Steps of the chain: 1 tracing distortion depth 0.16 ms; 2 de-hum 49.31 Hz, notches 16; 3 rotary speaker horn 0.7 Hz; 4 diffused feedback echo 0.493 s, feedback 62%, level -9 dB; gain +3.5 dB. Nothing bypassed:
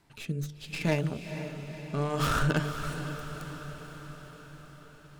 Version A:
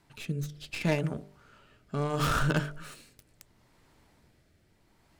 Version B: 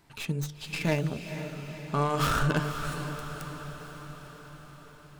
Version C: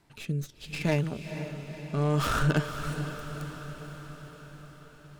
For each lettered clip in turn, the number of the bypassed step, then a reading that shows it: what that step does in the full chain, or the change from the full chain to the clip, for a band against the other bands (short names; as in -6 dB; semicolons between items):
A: 4, echo-to-direct -7.0 dB to none; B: 3, 1 kHz band +2.5 dB; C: 2, 125 Hz band +2.5 dB